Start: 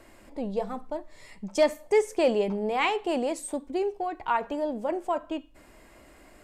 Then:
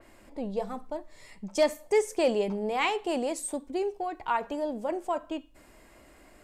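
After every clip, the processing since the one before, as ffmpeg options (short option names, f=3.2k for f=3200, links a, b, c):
-af "adynamicequalizer=threshold=0.00562:dfrequency=4100:dqfactor=0.7:tfrequency=4100:tqfactor=0.7:attack=5:release=100:ratio=0.375:range=2.5:mode=boostabove:tftype=highshelf,volume=-2dB"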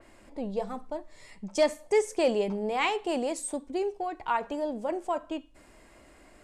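-af "lowpass=f=11k:w=0.5412,lowpass=f=11k:w=1.3066"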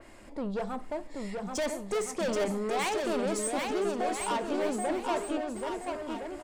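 -af "asoftclip=type=tanh:threshold=-31.5dB,aecho=1:1:780|1365|1804|2133|2380:0.631|0.398|0.251|0.158|0.1,volume=3.5dB"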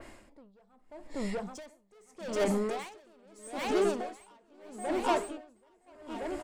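-af "aeval=exprs='val(0)*pow(10,-34*(0.5-0.5*cos(2*PI*0.79*n/s))/20)':c=same,volume=3.5dB"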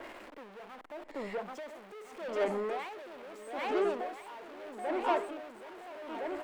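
-filter_complex "[0:a]aeval=exprs='val(0)+0.5*0.0112*sgn(val(0))':c=same,acrossover=split=290 3200:gain=0.126 1 0.158[a][b][c];[a][b][c]amix=inputs=3:normalize=0,volume=-1.5dB"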